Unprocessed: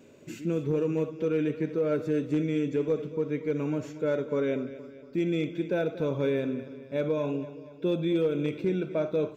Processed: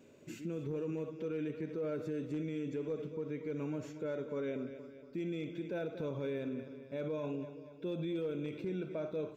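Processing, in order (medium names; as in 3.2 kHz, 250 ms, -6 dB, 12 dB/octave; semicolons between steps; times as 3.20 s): peak limiter -24.5 dBFS, peak gain reduction 6 dB; trim -6 dB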